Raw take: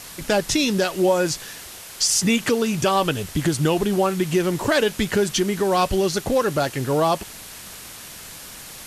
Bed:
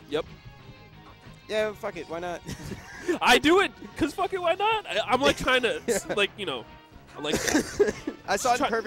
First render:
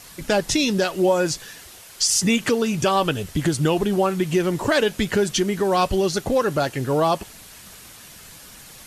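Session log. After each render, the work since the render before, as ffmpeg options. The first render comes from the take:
-af "afftdn=nr=6:nf=-39"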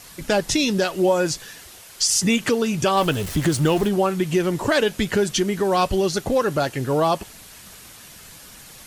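-filter_complex "[0:a]asettb=1/sr,asplit=3[a][b][c];[a]atrim=end=2.974[d];[b]atrim=start=2.97:end=3.89,asetpts=PTS-STARTPTS,afade=t=in:d=0.004:c=qsin,afade=t=out:st=0.916:d=0.004:c=qsin,aeval=exprs='val(0)+0.5*0.0376*sgn(val(0))':c=same[e];[c]atrim=start=3.886[f];[d][e]acrossfade=d=0.004:c1=hsin:c2=qsin[g];[g][f]acrossfade=d=0.004:c1=qsin:c2=hsin"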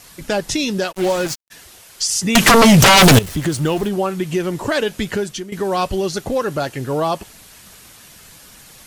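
-filter_complex "[0:a]asplit=3[a][b][c];[a]afade=t=out:st=0.91:d=0.02[d];[b]acrusher=bits=3:mix=0:aa=0.5,afade=t=in:st=0.91:d=0.02,afade=t=out:st=1.5:d=0.02[e];[c]afade=t=in:st=1.5:d=0.02[f];[d][e][f]amix=inputs=3:normalize=0,asettb=1/sr,asplit=3[g][h][i];[g]atrim=end=2.354[j];[h]atrim=start=2.35:end=3.19,asetpts=PTS-STARTPTS,afade=t=in:d=0.004:c=qsin,afade=t=out:st=0.836:d=0.004:c=qsin,aeval=exprs='0.531*sin(PI/2*6.31*val(0)/0.531)':c=same[k];[i]atrim=start=3.186[l];[j][k]acrossfade=d=0.004:c1=hsin:c2=qsin[m];[m][l]acrossfade=d=0.004:c1=qsin:c2=hsin,asplit=2[n][o];[n]atrim=end=5.52,asetpts=PTS-STARTPTS,afade=t=out:st=5.11:d=0.41:silence=0.199526[p];[o]atrim=start=5.52,asetpts=PTS-STARTPTS,afade=t=in:d=0.004:c=hsin:silence=0.199526[q];[p][q]concat=n=2:v=0:a=1"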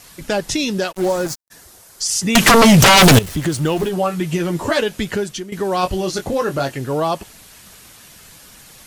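-filter_complex "[0:a]asettb=1/sr,asplit=3[a][b][c];[a]atrim=end=0.974[d];[b]atrim=start=0.97:end=2.06,asetpts=PTS-STARTPTS,afade=t=in:d=0.004:c=qsin,afade=t=out:st=1.086:d=0.004:c=qsin,equalizer=f=2.8k:w=1.2:g=-9.5[e];[c]atrim=start=2.056[f];[d][e]acrossfade=d=0.004:c1=hsin:c2=qsin[g];[g][f]acrossfade=d=0.004:c1=qsin:c2=hsin,asettb=1/sr,asplit=3[h][i][j];[h]atrim=end=3.784[k];[i]atrim=start=3.78:end=4.82,asetpts=PTS-STARTPTS,afade=t=in:d=0.004:c=qsin,afade=t=out:st=1.036:d=0.004:c=qsin,asplit=2[l][m];[m]adelay=12,volume=-3.5dB[n];[l][n]amix=inputs=2:normalize=0,atrim=end_sample=45864[o];[j]atrim=start=4.816[p];[k][o]acrossfade=d=0.004:c1=hsin:c2=qsin[q];[q][p]acrossfade=d=0.004:c1=qsin:c2=hsin,asettb=1/sr,asplit=3[r][s][t];[r]atrim=end=5.814[u];[s]atrim=start=5.81:end=6.78,asetpts=PTS-STARTPTS,afade=t=in:d=0.004:c=qsin,afade=t=out:st=0.966:d=0.004:c=qsin,asplit=2[v][w];[w]adelay=22,volume=-6dB[x];[v][x]amix=inputs=2:normalize=0,atrim=end_sample=42777[y];[t]atrim=start=6.776[z];[u][y]acrossfade=d=0.004:c1=hsin:c2=qsin[aa];[aa][z]acrossfade=d=0.004:c1=qsin:c2=hsin"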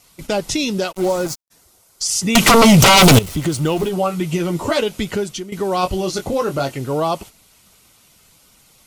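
-af "agate=range=-9dB:threshold=-35dB:ratio=16:detection=peak,bandreject=f=1.7k:w=5.2"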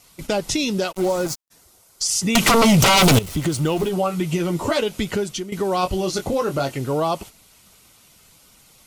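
-af "acompressor=threshold=-21dB:ratio=1.5"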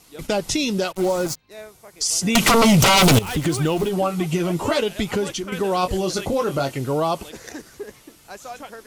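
-filter_complex "[1:a]volume=-12.5dB[a];[0:a][a]amix=inputs=2:normalize=0"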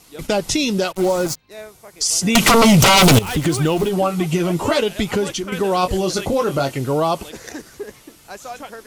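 -af "volume=3dB"

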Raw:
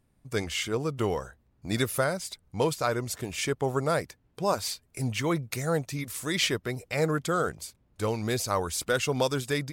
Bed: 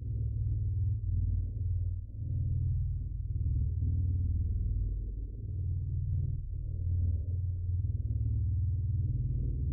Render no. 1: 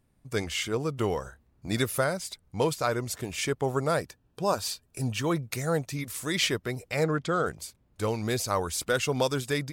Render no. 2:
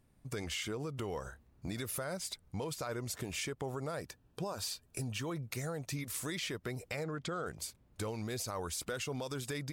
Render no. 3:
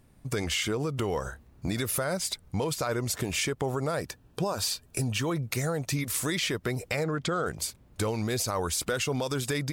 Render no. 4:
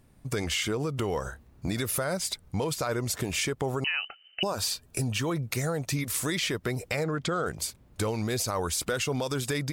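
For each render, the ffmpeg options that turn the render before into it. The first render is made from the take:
-filter_complex "[0:a]asettb=1/sr,asplit=3[a][b][c];[a]atrim=end=1.234[d];[b]atrim=start=1.23:end=1.69,asetpts=PTS-STARTPTS,afade=t=in:d=0.004:c=qsin,afade=t=out:st=0.456:d=0.004:c=qsin,asplit=2[e][f];[f]adelay=30,volume=-5dB[g];[e][g]amix=inputs=2:normalize=0,atrim=end_sample=20286[h];[c]atrim=start=1.686[i];[d][h]acrossfade=d=0.004:c1=hsin:c2=qsin[j];[j][i]acrossfade=d=0.004:c1=qsin:c2=hsin,asettb=1/sr,asplit=3[k][l][m];[k]atrim=end=3.974[n];[l]atrim=start=3.97:end=5.34,asetpts=PTS-STARTPTS,afade=t=in:d=0.004:c=qsin,afade=t=out:st=1.366:d=0.004:c=qsin,asuperstop=centerf=2100:order=4:qfactor=6.8[o];[m]atrim=start=5.336[p];[n][o]acrossfade=d=0.004:c1=hsin:c2=qsin[q];[q][p]acrossfade=d=0.004:c1=qsin:c2=hsin,asplit=3[r][s][t];[r]afade=t=out:st=7.03:d=0.02[u];[s]lowpass=5.2k,afade=t=in:st=7.03:d=0.02,afade=t=out:st=7.45:d=0.02[v];[t]afade=t=in:st=7.45:d=0.02[w];[u][v][w]amix=inputs=3:normalize=0"
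-af "alimiter=limit=-23.5dB:level=0:latency=1:release=65,acompressor=threshold=-36dB:ratio=4"
-af "volume=9.5dB"
-filter_complex "[0:a]asettb=1/sr,asplit=3[a][b][c];[a]atrim=end=3.844[d];[b]atrim=start=3.84:end=4.43,asetpts=PTS-STARTPTS,afade=t=in:d=0.004:c=qsin,afade=t=out:st=0.586:d=0.004:c=qsin,lowpass=f=2.6k:t=q:w=0.5098,lowpass=f=2.6k:t=q:w=0.6013,lowpass=f=2.6k:t=q:w=0.9,lowpass=f=2.6k:t=q:w=2.563,afreqshift=-3100[e];[c]atrim=start=4.426[f];[d][e]acrossfade=d=0.004:c1=hsin:c2=qsin[g];[g][f]acrossfade=d=0.004:c1=qsin:c2=hsin"

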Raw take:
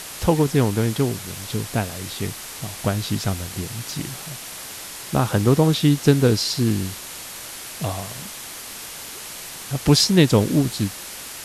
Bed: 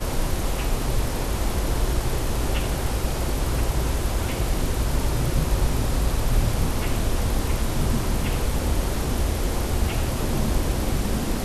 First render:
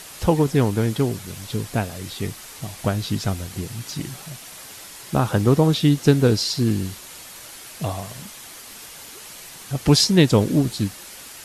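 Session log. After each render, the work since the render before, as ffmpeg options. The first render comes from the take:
-af "afftdn=nr=6:nf=-36"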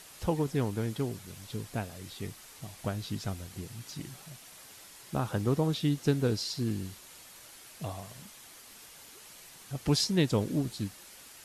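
-af "volume=-11.5dB"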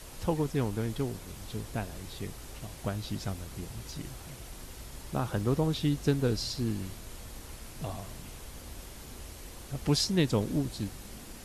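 -filter_complex "[1:a]volume=-22.5dB[a];[0:a][a]amix=inputs=2:normalize=0"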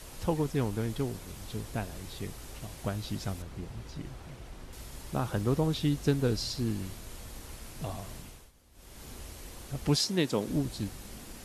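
-filter_complex "[0:a]asettb=1/sr,asplit=3[a][b][c];[a]atrim=end=3.424[d];[b]atrim=start=3.42:end=4.73,asetpts=PTS-STARTPTS,afade=t=in:d=0.004:c=qsin,afade=t=out:st=1.306:d=0.004:c=qsin,lowpass=f=2.3k:p=1[e];[c]atrim=start=4.726[f];[d][e]acrossfade=d=0.004:c1=hsin:c2=qsin[g];[g][f]acrossfade=d=0.004:c1=qsin:c2=hsin,asettb=1/sr,asplit=3[h][i][j];[h]atrim=end=9.964[k];[i]atrim=start=9.96:end=10.48,asetpts=PTS-STARTPTS,afade=t=in:d=0.004:c=qsin,afade=t=out:st=0.516:d=0.004:c=qsin,highpass=200[l];[j]atrim=start=10.476[m];[k][l]acrossfade=d=0.004:c1=hsin:c2=qsin[n];[n][m]acrossfade=d=0.004:c1=qsin:c2=hsin,asplit=3[o][p][q];[o]atrim=end=8.52,asetpts=PTS-STARTPTS,afade=t=out:st=8.17:d=0.35:silence=0.133352[r];[p]atrim=start=8.52:end=8.72,asetpts=PTS-STARTPTS,volume=-17.5dB[s];[q]atrim=start=8.72,asetpts=PTS-STARTPTS,afade=t=in:d=0.35:silence=0.133352[t];[r][s][t]concat=n=3:v=0:a=1"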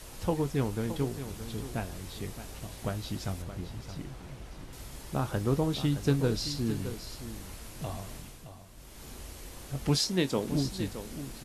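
-filter_complex "[0:a]asplit=2[a][b];[b]adelay=22,volume=-12dB[c];[a][c]amix=inputs=2:normalize=0,aecho=1:1:619:0.266"

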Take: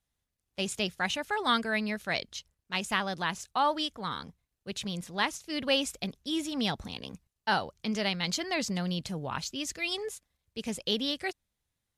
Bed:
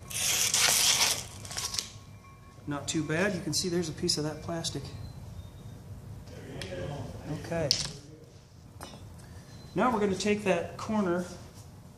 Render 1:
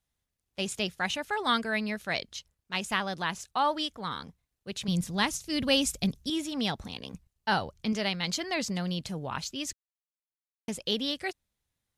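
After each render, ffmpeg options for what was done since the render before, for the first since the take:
-filter_complex "[0:a]asettb=1/sr,asplit=3[a][b][c];[a]atrim=end=4.884[d];[b]atrim=start=4.88:end=6.3,asetpts=PTS-STARTPTS,afade=t=in:d=0.004:c=qsin,afade=t=out:st=1.416:d=0.004:c=qsin,bass=f=250:g=12,treble=f=4k:g=7[e];[c]atrim=start=6.296[f];[d][e]acrossfade=d=0.004:c1=hsin:c2=qsin[g];[g][f]acrossfade=d=0.004:c1=qsin:c2=hsin,asettb=1/sr,asplit=3[h][i][j];[h]atrim=end=7.144[k];[i]atrim=start=7.14:end=7.93,asetpts=PTS-STARTPTS,afade=t=in:d=0.004:c=qsin,afade=t=out:st=0.786:d=0.004:c=qsin,lowshelf=f=130:g=10.5[l];[j]atrim=start=7.926[m];[k][l]acrossfade=d=0.004:c1=hsin:c2=qsin[n];[n][m]acrossfade=d=0.004:c1=qsin:c2=hsin,asplit=3[o][p][q];[o]atrim=end=9.73,asetpts=PTS-STARTPTS,afade=t=out:st=9.726:d=0.004:c=hsin[r];[p]atrim=start=9.73:end=10.68,asetpts=PTS-STARTPTS,volume=0[s];[q]atrim=start=10.68,asetpts=PTS-STARTPTS,afade=t=in:d=0.004:c=hsin[t];[r][s][t]concat=n=3:v=0:a=1"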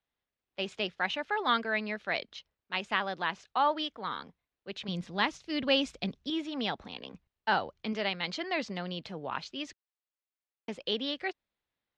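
-filter_complex "[0:a]lowpass=6.3k,acrossover=split=240 4300:gain=0.224 1 0.1[a][b][c];[a][b][c]amix=inputs=3:normalize=0"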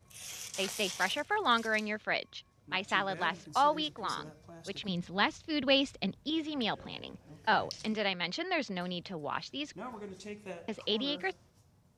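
-filter_complex "[1:a]volume=-16.5dB[a];[0:a][a]amix=inputs=2:normalize=0"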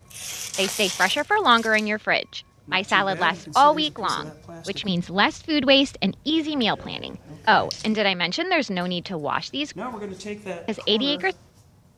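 -af "volume=11dB,alimiter=limit=-3dB:level=0:latency=1"

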